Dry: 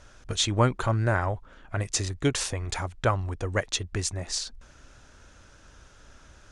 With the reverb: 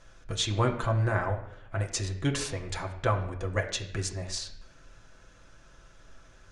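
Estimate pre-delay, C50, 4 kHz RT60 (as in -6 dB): 6 ms, 10.0 dB, 0.60 s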